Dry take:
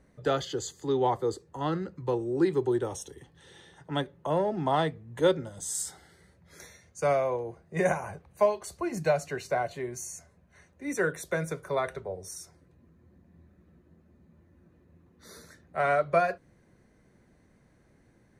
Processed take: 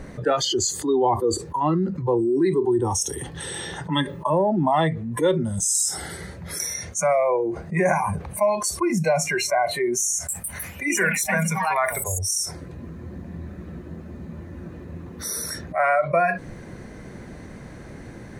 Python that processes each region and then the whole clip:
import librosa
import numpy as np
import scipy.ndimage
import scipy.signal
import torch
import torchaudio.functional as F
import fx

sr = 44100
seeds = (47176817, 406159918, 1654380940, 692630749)

y = fx.chain(x, sr, fx.high_shelf(hz=4000.0, db=4.0),
    fx.notch_comb(f0_hz=750.0), at=(3.9, 4.33))
y = fx.chain(y, sr, fx.peak_eq(hz=340.0, db=-6.5, octaves=1.6),
    fx.echo_pitch(ms=155, semitones=3, count=3, db_per_echo=-6.0), at=(10.13, 12.39))
y = fx.noise_reduce_blind(y, sr, reduce_db=19)
y = fx.high_shelf(y, sr, hz=11000.0, db=-8.0)
y = fx.env_flatten(y, sr, amount_pct=70)
y = y * 10.0 ** (2.0 / 20.0)